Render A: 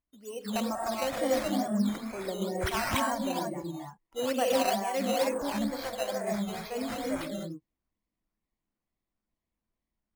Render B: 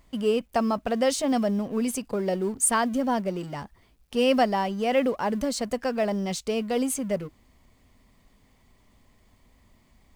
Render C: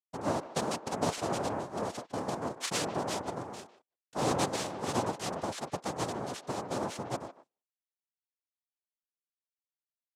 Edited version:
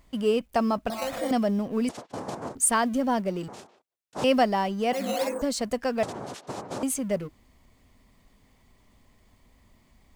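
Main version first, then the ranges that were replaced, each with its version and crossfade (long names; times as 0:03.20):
B
0:00.90–0:01.31: punch in from A
0:01.89–0:02.55: punch in from C
0:03.48–0:04.24: punch in from C
0:04.93–0:05.42: punch in from A
0:06.03–0:06.83: punch in from C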